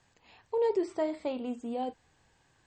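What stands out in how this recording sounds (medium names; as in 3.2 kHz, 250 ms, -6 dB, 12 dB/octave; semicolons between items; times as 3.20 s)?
noise floor -69 dBFS; spectral tilt -1.5 dB/octave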